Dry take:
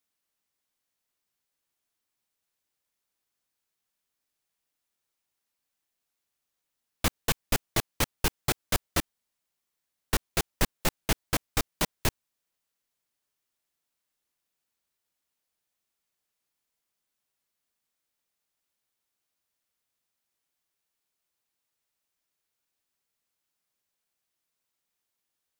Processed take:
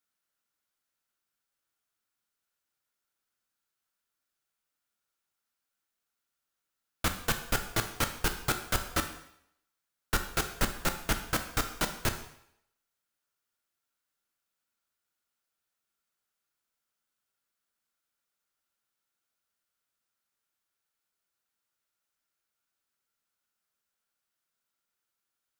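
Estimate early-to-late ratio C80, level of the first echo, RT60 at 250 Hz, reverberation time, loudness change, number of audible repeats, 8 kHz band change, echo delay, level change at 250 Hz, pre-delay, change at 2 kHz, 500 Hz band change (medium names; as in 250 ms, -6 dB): 12.5 dB, no echo, 0.65 s, 0.70 s, -2.0 dB, no echo, -2.5 dB, no echo, -2.5 dB, 8 ms, +0.5 dB, -2.5 dB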